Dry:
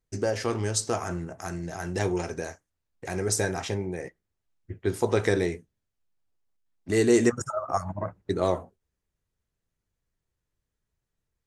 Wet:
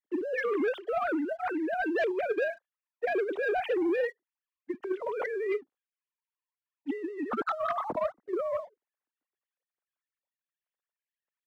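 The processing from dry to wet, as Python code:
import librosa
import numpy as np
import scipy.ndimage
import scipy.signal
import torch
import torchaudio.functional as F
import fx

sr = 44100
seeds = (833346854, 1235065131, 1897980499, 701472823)

y = fx.sine_speech(x, sr)
y = fx.over_compress(y, sr, threshold_db=-33.0, ratio=-1.0)
y = fx.leveller(y, sr, passes=1)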